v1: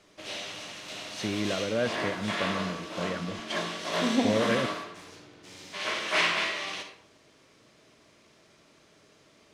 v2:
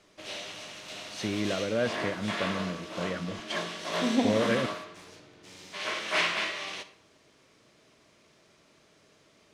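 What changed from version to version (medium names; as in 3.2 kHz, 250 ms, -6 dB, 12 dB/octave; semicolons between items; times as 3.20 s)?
background: send -8.0 dB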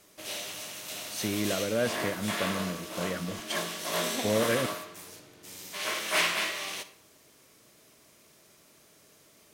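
second voice: add high-pass 1.2 kHz 6 dB/octave; master: remove low-pass 4.8 kHz 12 dB/octave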